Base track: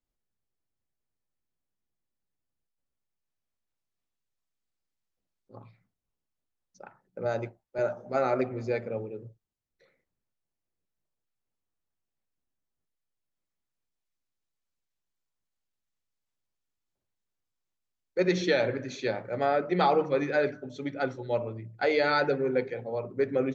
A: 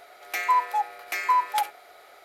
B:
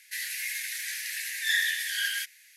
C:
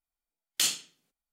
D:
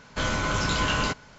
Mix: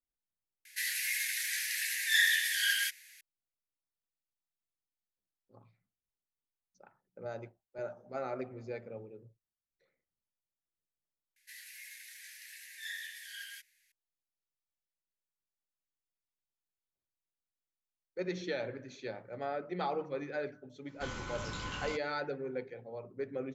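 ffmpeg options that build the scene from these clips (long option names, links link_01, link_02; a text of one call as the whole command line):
ffmpeg -i bed.wav -i cue0.wav -i cue1.wav -i cue2.wav -i cue3.wav -filter_complex "[2:a]asplit=2[link_01][link_02];[0:a]volume=-11.5dB[link_03];[4:a]asuperstop=centerf=650:order=4:qfactor=6.9[link_04];[link_01]atrim=end=2.56,asetpts=PTS-STARTPTS,volume=-0.5dB,afade=type=in:duration=0.004:curve=hsin,afade=type=out:start_time=2.556:duration=0.004:curve=hsin,adelay=650[link_05];[link_02]atrim=end=2.56,asetpts=PTS-STARTPTS,volume=-16.5dB,afade=type=in:duration=0.004:curve=hsin,afade=type=out:start_time=2.556:duration=0.004:curve=hsin,adelay=11360[link_06];[link_04]atrim=end=1.38,asetpts=PTS-STARTPTS,volume=-15.5dB,afade=type=in:duration=0.05,afade=type=out:start_time=1.33:duration=0.05,adelay=919044S[link_07];[link_03][link_05][link_06][link_07]amix=inputs=4:normalize=0" out.wav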